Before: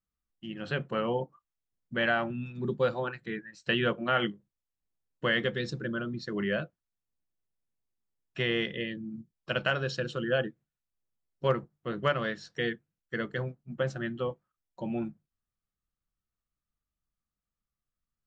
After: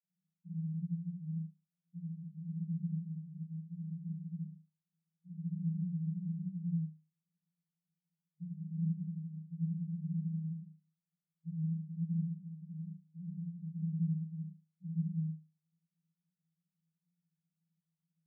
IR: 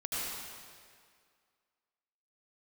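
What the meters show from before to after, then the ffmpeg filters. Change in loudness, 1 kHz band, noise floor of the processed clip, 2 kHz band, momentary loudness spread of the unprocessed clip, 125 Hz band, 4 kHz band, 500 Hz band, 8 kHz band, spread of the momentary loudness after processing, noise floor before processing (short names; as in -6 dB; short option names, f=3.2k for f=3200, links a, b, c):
-8.0 dB, under -40 dB, under -85 dBFS, under -40 dB, 12 LU, +1.5 dB, under -40 dB, under -40 dB, n/a, 11 LU, under -85 dBFS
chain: -filter_complex "[0:a]aemphasis=mode=reproduction:type=riaa,aeval=exprs='0.224*(cos(1*acos(clip(val(0)/0.224,-1,1)))-cos(1*PI/2))+0.00562*(cos(8*acos(clip(val(0)/0.224,-1,1)))-cos(8*PI/2))':c=same,aeval=exprs='(mod(20*val(0)+1,2)-1)/20':c=same,asuperpass=centerf=170:order=12:qfactor=5.9[a];[1:a]atrim=start_sample=2205,atrim=end_sample=6615[b];[a][b]afir=irnorm=-1:irlink=0,volume=10dB"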